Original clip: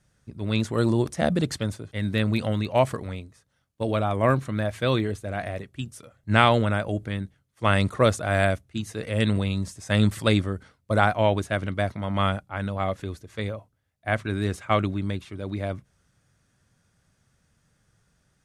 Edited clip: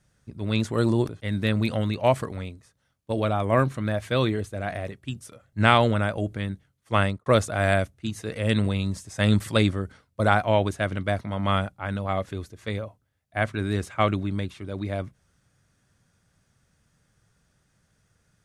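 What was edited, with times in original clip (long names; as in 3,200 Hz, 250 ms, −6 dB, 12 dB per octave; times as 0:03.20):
0:01.09–0:01.80: remove
0:07.68–0:07.97: fade out and dull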